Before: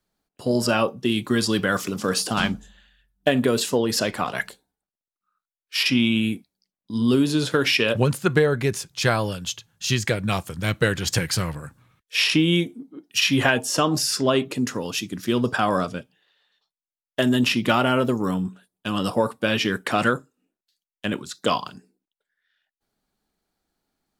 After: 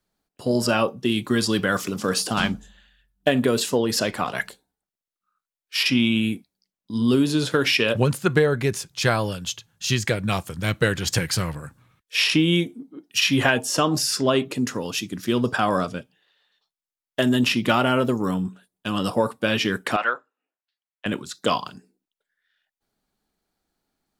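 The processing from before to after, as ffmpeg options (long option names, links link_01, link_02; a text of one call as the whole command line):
ffmpeg -i in.wav -filter_complex "[0:a]asettb=1/sr,asplit=3[link_01][link_02][link_03];[link_01]atrim=end=19.964[link_04];[link_02]atrim=start=19.96:end=21.06,asetpts=PTS-STARTPTS,afade=type=in:duration=0.004:curve=qsin,afade=type=out:start_time=1.096:duration=0.004:curve=qsin,asuperpass=centerf=1300:order=4:qfactor=0.65[link_05];[link_03]atrim=start=21.056[link_06];[link_04][link_05]acrossfade=duration=0.004:curve1=hsin:curve2=qsin[link_07];[link_07][link_06]acrossfade=duration=0.004:curve1=qsin:curve2=hsin" out.wav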